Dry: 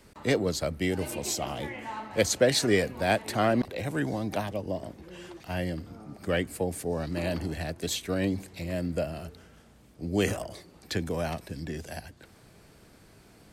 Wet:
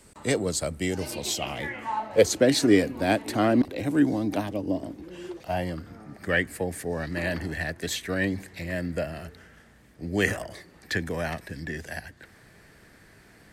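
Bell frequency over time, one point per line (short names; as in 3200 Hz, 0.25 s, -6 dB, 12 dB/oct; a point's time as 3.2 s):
bell +12.5 dB 0.46 oct
0.81 s 8200 Hz
1.72 s 1600 Hz
2.39 s 290 Hz
5.2 s 290 Hz
5.9 s 1800 Hz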